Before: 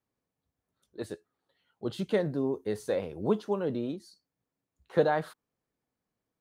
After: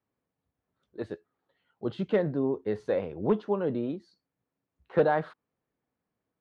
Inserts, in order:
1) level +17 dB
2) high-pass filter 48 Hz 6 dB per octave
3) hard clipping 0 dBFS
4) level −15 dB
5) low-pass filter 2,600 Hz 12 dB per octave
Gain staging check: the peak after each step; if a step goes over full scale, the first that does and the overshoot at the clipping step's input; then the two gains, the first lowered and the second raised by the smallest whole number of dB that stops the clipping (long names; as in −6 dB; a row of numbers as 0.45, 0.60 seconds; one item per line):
+6.0, +5.5, 0.0, −15.0, −14.5 dBFS
step 1, 5.5 dB
step 1 +11 dB, step 4 −9 dB